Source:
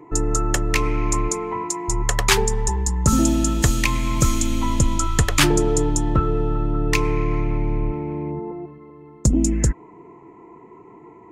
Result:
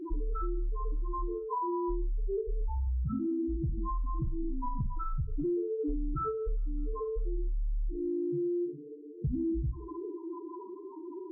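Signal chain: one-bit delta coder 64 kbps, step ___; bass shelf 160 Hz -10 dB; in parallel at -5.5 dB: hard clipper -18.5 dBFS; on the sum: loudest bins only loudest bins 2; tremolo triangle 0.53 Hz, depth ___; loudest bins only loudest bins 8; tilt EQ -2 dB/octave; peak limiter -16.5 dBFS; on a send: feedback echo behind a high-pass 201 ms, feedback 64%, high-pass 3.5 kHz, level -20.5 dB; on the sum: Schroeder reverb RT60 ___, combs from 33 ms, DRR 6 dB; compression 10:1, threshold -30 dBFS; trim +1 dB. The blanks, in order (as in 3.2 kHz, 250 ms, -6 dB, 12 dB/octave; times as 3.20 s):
-32 dBFS, 45%, 0.31 s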